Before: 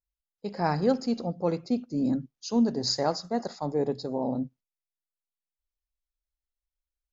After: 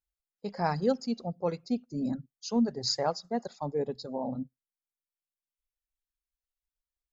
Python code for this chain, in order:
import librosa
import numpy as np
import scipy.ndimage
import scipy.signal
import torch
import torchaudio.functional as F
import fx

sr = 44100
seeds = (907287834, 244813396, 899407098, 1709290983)

y = fx.dereverb_blind(x, sr, rt60_s=1.8)
y = fx.dynamic_eq(y, sr, hz=320.0, q=4.8, threshold_db=-47.0, ratio=4.0, max_db=-8)
y = F.gain(torch.from_numpy(y), -1.5).numpy()